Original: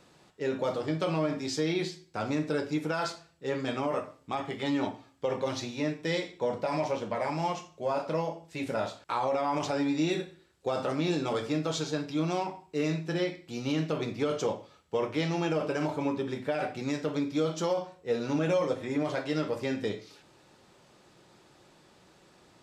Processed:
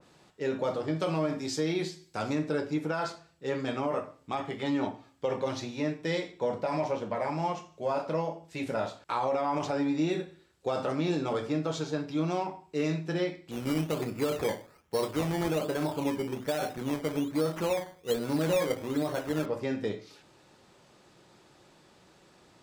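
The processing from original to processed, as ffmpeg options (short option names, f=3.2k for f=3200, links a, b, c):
-filter_complex "[0:a]asettb=1/sr,asplit=3[a][b][c];[a]atrim=end=0.964[d];[b]atrim=start=0.96:end=2.33,asetpts=PTS-STARTPTS,afade=t=in:d=0.004:c=qsin,afade=t=out:st=1.366:d=0.004:c=qsin,aemphasis=mode=production:type=cd[e];[c]atrim=start=2.326[f];[d][e]acrossfade=d=0.004:c1=hsin:c2=qsin[g];[g][f]acrossfade=d=0.004:c1=qsin:c2=hsin,asettb=1/sr,asplit=3[h][i][j];[h]atrim=end=13.514[k];[i]atrim=start=13.51:end=19.46,asetpts=PTS-STARTPTS,afade=t=in:d=0.004:c=qsin,afade=t=out:st=5.946:d=0.004:c=qsin,acrusher=samples=13:mix=1:aa=0.000001:lfo=1:lforange=7.8:lforate=1.2[l];[j]atrim=start=19.456[m];[k][l]acrossfade=d=0.004:c1=hsin:c2=qsin[n];[n][m]acrossfade=d=0.004:c1=qsin:c2=hsin,adynamicequalizer=threshold=0.00501:dfrequency=2000:dqfactor=0.7:tfrequency=2000:tqfactor=0.7:attack=5:release=100:ratio=0.375:range=3:mode=cutabove:tftype=highshelf"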